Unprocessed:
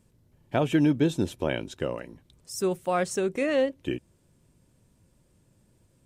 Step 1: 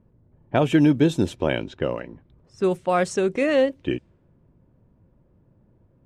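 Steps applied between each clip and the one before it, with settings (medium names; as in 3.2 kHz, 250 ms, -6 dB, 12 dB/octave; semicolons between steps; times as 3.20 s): level-controlled noise filter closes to 1.1 kHz, open at -22 dBFS; treble shelf 9.9 kHz -6.5 dB; trim +5 dB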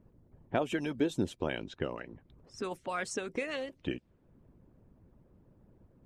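harmonic-percussive split harmonic -15 dB; compression 1.5:1, threshold -51 dBFS, peak gain reduction 13 dB; trim +3 dB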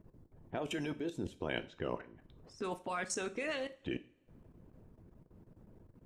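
level held to a coarse grid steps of 21 dB; two-slope reverb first 0.4 s, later 2.1 s, from -28 dB, DRR 10 dB; trim +5 dB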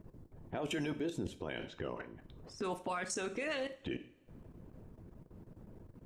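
peak limiter -33.5 dBFS, peak gain reduction 11.5 dB; trim +5 dB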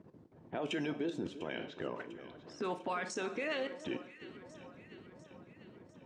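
band-pass 170–5200 Hz; echo whose repeats swap between lows and highs 349 ms, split 1.4 kHz, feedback 75%, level -13 dB; trim +1 dB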